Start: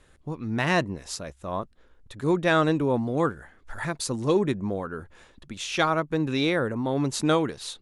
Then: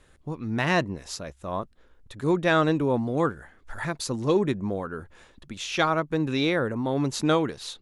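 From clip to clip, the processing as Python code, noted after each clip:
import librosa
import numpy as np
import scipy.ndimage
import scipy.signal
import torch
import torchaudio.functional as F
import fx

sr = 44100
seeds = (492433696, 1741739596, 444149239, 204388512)

y = fx.dynamic_eq(x, sr, hz=8900.0, q=2.6, threshold_db=-55.0, ratio=4.0, max_db=-6)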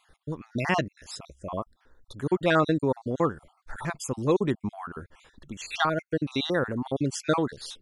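y = fx.spec_dropout(x, sr, seeds[0], share_pct=45)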